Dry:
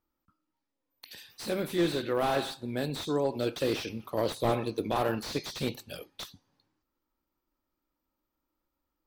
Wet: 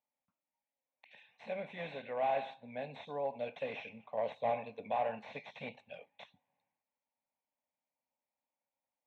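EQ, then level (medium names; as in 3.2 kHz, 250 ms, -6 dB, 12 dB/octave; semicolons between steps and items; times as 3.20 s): cabinet simulation 320–3400 Hz, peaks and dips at 320 Hz -7 dB, 480 Hz -4 dB, 1 kHz -5 dB, 1.7 kHz -8 dB, 3.1 kHz -10 dB; static phaser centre 1.3 kHz, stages 6; 0.0 dB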